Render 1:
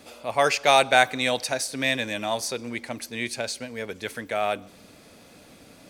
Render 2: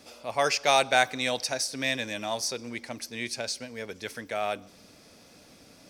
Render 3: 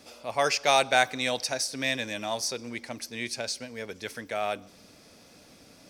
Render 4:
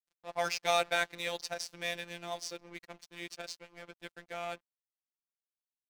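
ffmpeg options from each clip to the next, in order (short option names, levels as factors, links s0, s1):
-af "equalizer=f=5400:t=o:w=0.42:g=9,volume=0.596"
-af anull
-af "adynamicsmooth=sensitivity=6.5:basefreq=2900,aeval=exprs='sgn(val(0))*max(abs(val(0))-0.00891,0)':c=same,afftfilt=real='hypot(re,im)*cos(PI*b)':imag='0':win_size=1024:overlap=0.75,volume=0.708"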